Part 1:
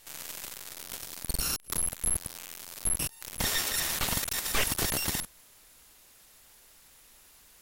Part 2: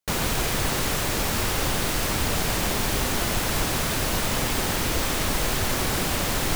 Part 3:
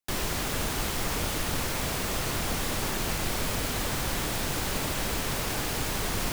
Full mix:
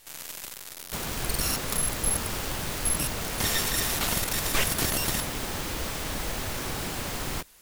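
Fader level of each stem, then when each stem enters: +1.5, -8.5, -9.0 dB; 0.00, 0.85, 1.10 s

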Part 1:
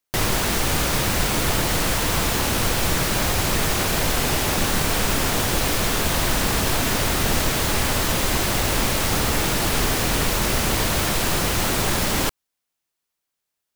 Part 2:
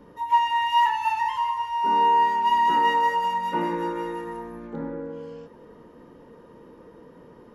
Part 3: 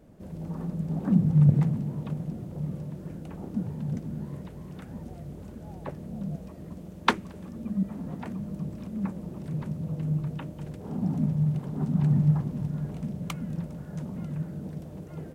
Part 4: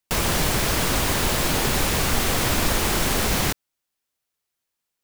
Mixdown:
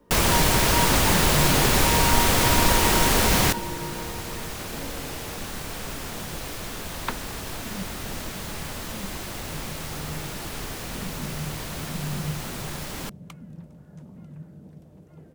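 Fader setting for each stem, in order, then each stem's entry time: -13.0, -9.0, -9.0, +2.0 dB; 0.80, 0.00, 0.00, 0.00 s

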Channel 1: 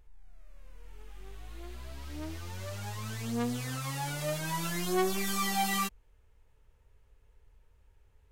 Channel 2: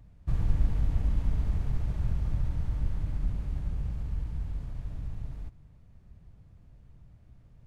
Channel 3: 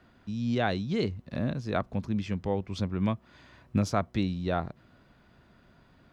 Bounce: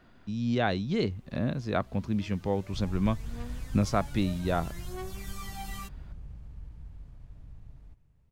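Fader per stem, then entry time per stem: -12.0, -11.5, +0.5 dB; 0.00, 2.45, 0.00 s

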